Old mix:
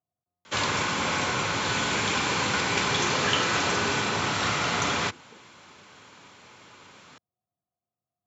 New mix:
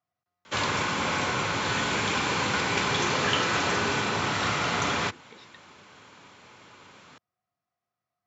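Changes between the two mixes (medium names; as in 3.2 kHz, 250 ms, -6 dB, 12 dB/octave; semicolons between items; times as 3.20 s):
speech: remove Gaussian low-pass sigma 9.8 samples; master: add treble shelf 4.8 kHz -5 dB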